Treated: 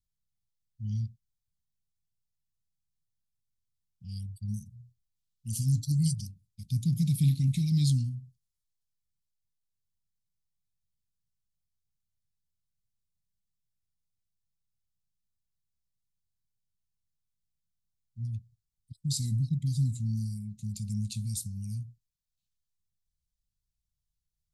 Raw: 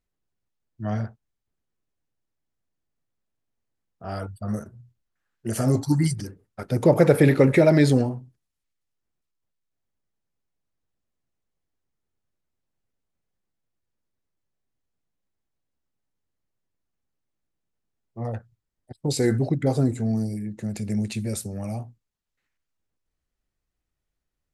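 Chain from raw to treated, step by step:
inverse Chebyshev band-stop filter 380–1,700 Hz, stop band 50 dB
level −2.5 dB

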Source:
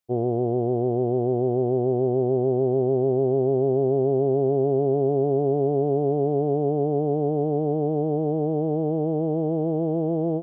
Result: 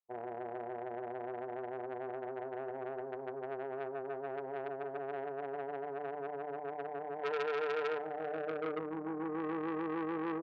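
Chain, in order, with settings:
mains-hum notches 50/100/150/200/250/300/350/400/450 Hz
amplitude modulation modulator 270 Hz, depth 35%
0:07.23–0:07.99: hollow resonant body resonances 470/960 Hz, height 14 dB, ringing for 30 ms
0:08.78–0:09.39: parametric band 340 Hz → 710 Hz −9 dB 0.47 octaves
far-end echo of a speakerphone 330 ms, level −13 dB
band-pass filter sweep 920 Hz → 370 Hz, 0:08.02–0:08.89
saturating transformer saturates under 1,900 Hz
level −3 dB

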